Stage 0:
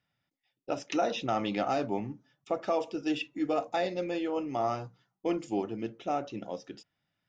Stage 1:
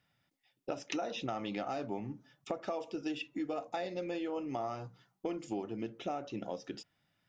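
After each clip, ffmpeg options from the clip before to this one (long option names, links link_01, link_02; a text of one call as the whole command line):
ffmpeg -i in.wav -af "acompressor=threshold=-40dB:ratio=5,volume=4.5dB" out.wav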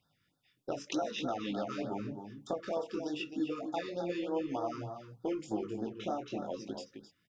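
ffmpeg -i in.wav -filter_complex "[0:a]flanger=delay=18.5:depth=5.9:speed=0.9,asplit=2[link_01][link_02];[link_02]adelay=262.4,volume=-8dB,highshelf=frequency=4000:gain=-5.9[link_03];[link_01][link_03]amix=inputs=2:normalize=0,afftfilt=real='re*(1-between(b*sr/1024,660*pow(2500/660,0.5+0.5*sin(2*PI*3.3*pts/sr))/1.41,660*pow(2500/660,0.5+0.5*sin(2*PI*3.3*pts/sr))*1.41))':imag='im*(1-between(b*sr/1024,660*pow(2500/660,0.5+0.5*sin(2*PI*3.3*pts/sr))/1.41,660*pow(2500/660,0.5+0.5*sin(2*PI*3.3*pts/sr))*1.41))':win_size=1024:overlap=0.75,volume=4.5dB" out.wav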